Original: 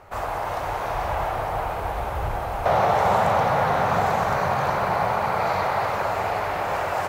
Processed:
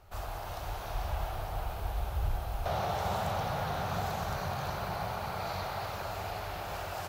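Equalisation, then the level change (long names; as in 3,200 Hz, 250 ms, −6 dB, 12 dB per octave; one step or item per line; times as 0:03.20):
graphic EQ with 10 bands 125 Hz −6 dB, 250 Hz −9 dB, 500 Hz −11 dB, 1,000 Hz −11 dB, 2,000 Hz −12 dB, 8,000 Hz −6 dB
0.0 dB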